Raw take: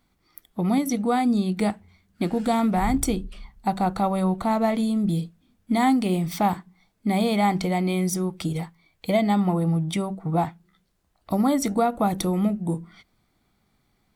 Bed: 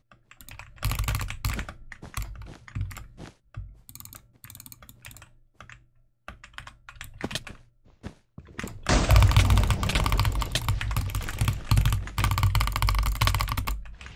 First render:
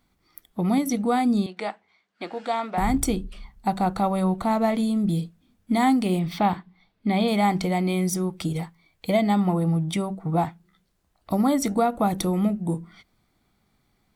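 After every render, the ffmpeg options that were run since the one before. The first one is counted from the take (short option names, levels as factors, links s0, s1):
-filter_complex "[0:a]asettb=1/sr,asplit=3[s0][s1][s2];[s0]atrim=end=1.464[s3];[s1]atrim=start=1.46:end=2.78,asetpts=PTS-STARTPTS,afade=t=in:d=0.004:c=qsin,afade=t=out:st=1.316:d=0.004:c=qsin,highpass=560,lowpass=4500[s4];[s2]atrim=start=2.776[s5];[s3][s4]acrossfade=d=0.004:c1=hsin:c2=qsin[s6];[s6][s5]acrossfade=d=0.004:c1=qsin:c2=hsin,asettb=1/sr,asplit=3[s7][s8][s9];[s7]atrim=end=6.194[s10];[s8]atrim=start=6.19:end=7.28,asetpts=PTS-STARTPTS,afade=t=in:d=0.004:c=qsin,afade=t=out:st=1.086:d=0.004:c=qsin,highshelf=f=5200:t=q:w=1.5:g=-10[s11];[s9]atrim=start=7.276[s12];[s10][s11]acrossfade=d=0.004:c1=hsin:c2=qsin[s13];[s13][s12]acrossfade=d=0.004:c1=qsin:c2=hsin"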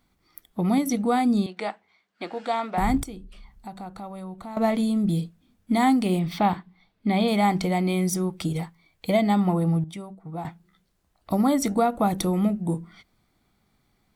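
-filter_complex "[0:a]asettb=1/sr,asplit=3[s0][s1][s2];[s0]atrim=end=3.034[s3];[s1]atrim=start=3.03:end=4.57,asetpts=PTS-STARTPTS,afade=t=in:d=0.004:c=qsin,afade=t=out:st=1.536:d=0.004:c=qsin,acompressor=threshold=0.00501:ratio=2:attack=3.2:release=140:knee=1:detection=peak[s4];[s2]atrim=start=4.566[s5];[s3][s4]acrossfade=d=0.004:c1=hsin:c2=qsin[s6];[s6][s5]acrossfade=d=0.004:c1=qsin:c2=hsin,asplit=3[s7][s8][s9];[s7]atrim=end=9.842[s10];[s8]atrim=start=9.838:end=10.452,asetpts=PTS-STARTPTS,volume=0.282[s11];[s9]atrim=start=10.448[s12];[s10][s11]acrossfade=d=0.004:c1=hsin:c2=hsin[s13];[s13][s12]acrossfade=d=0.004:c1=hsin:c2=hsin"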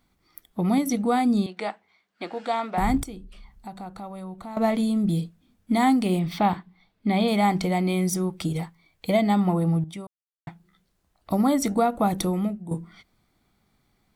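-filter_complex "[0:a]asplit=4[s0][s1][s2][s3];[s0]atrim=end=10.07,asetpts=PTS-STARTPTS,afade=t=out:st=10.066:d=0.004:c=hsin[s4];[s1]atrim=start=10.07:end=10.47,asetpts=PTS-STARTPTS,volume=0[s5];[s2]atrim=start=10.47:end=12.71,asetpts=PTS-STARTPTS,afade=t=in:d=0.004:c=hsin,afade=t=out:st=1.76:d=0.48:silence=0.251189[s6];[s3]atrim=start=12.71,asetpts=PTS-STARTPTS,afade=t=in:d=0.004:c=hsin:silence=0.251189[s7];[s4][s5][s6][s7]concat=n=4:v=0:a=1"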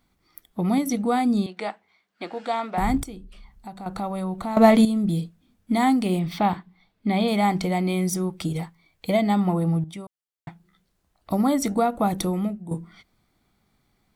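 -filter_complex "[0:a]asplit=3[s0][s1][s2];[s0]atrim=end=3.862[s3];[s1]atrim=start=3.858:end=4.852,asetpts=PTS-STARTPTS,volume=2.66[s4];[s2]atrim=start=4.848[s5];[s3][s4]acrossfade=d=0.004:c1=hsin:c2=hsin[s6];[s6][s5]acrossfade=d=0.004:c1=hsin:c2=hsin"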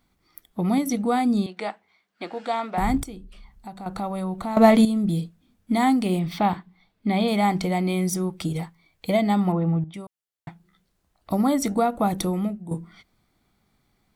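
-filter_complex "[0:a]asettb=1/sr,asplit=3[s0][s1][s2];[s0]atrim=end=9.524[s3];[s1]atrim=start=9.52:end=9.94,asetpts=PTS-STARTPTS,afade=t=in:d=0.004:c=qsin,afade=t=out:st=0.416:d=0.004:c=qsin,lowpass=f=3200:w=0.5412,lowpass=f=3200:w=1.3066[s4];[s2]atrim=start=9.936[s5];[s3][s4]acrossfade=d=0.004:c1=hsin:c2=qsin[s6];[s6][s5]acrossfade=d=0.004:c1=qsin:c2=hsin"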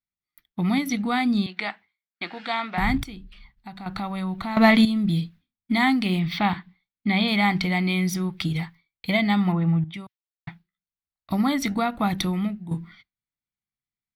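-af "agate=range=0.0224:threshold=0.00891:ratio=3:detection=peak,equalizer=f=125:t=o:w=1:g=4,equalizer=f=500:t=o:w=1:g=-10,equalizer=f=2000:t=o:w=1:g=8,equalizer=f=4000:t=o:w=1:g=8,equalizer=f=8000:t=o:w=1:g=-11"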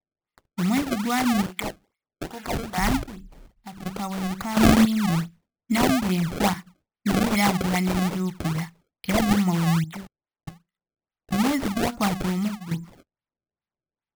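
-af "acrusher=samples=27:mix=1:aa=0.000001:lfo=1:lforange=43.2:lforate=2.4"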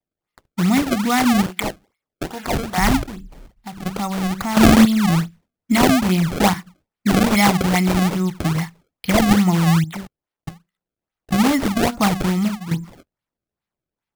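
-af "volume=2,alimiter=limit=0.891:level=0:latency=1"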